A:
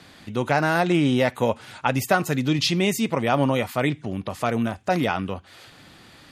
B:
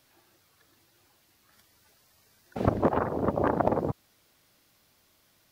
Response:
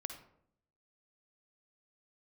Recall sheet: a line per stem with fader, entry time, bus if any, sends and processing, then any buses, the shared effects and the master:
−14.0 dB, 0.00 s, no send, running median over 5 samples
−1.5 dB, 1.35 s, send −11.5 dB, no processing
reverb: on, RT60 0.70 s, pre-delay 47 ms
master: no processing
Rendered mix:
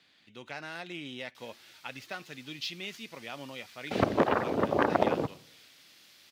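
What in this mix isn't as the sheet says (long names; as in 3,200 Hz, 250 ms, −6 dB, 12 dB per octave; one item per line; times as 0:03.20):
stem A −14.0 dB → −22.0 dB
master: extra meter weighting curve D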